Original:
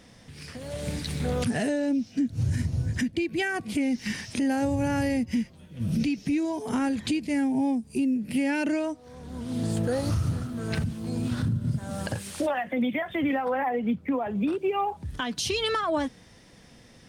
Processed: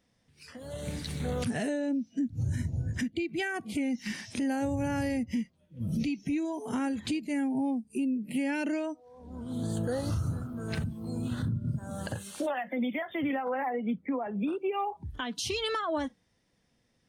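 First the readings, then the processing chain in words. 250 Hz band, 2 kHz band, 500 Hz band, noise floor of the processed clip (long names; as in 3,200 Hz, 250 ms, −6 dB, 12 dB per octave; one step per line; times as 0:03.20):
−4.5 dB, −4.5 dB, −4.5 dB, −72 dBFS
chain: noise reduction from a noise print of the clip's start 15 dB
level −4.5 dB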